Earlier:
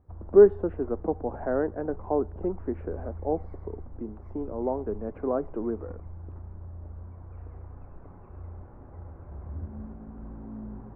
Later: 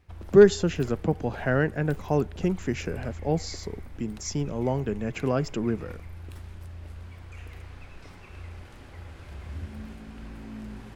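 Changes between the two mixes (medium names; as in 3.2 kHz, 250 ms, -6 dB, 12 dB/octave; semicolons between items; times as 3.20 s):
speech: remove high-pass 260 Hz 24 dB/octave; master: remove low-pass 1.1 kHz 24 dB/octave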